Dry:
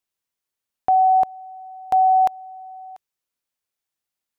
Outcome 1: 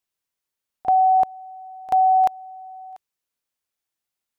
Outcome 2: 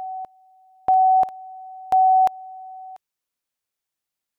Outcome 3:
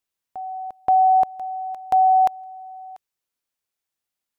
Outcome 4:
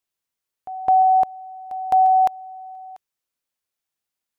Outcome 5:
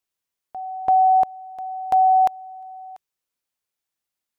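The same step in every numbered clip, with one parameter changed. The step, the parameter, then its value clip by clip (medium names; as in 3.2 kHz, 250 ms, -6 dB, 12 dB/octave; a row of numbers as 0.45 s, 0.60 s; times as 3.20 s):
reverse echo, time: 35 ms, 985 ms, 527 ms, 211 ms, 337 ms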